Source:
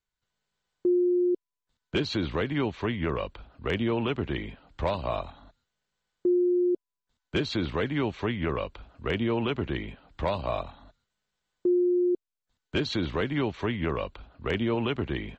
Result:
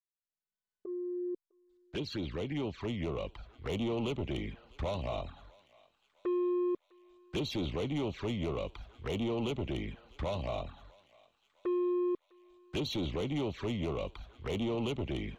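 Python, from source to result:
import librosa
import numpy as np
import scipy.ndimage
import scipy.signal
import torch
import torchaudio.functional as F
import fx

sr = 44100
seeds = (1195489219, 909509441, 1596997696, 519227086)

y = fx.fade_in_head(x, sr, length_s=3.84)
y = fx.notch(y, sr, hz=930.0, q=17.0)
y = 10.0 ** (-28.5 / 20.0) * np.tanh(y / 10.0 ** (-28.5 / 20.0))
y = fx.env_flanger(y, sr, rest_ms=4.7, full_db=-31.5)
y = fx.echo_thinned(y, sr, ms=654, feedback_pct=61, hz=870.0, wet_db=-22.0)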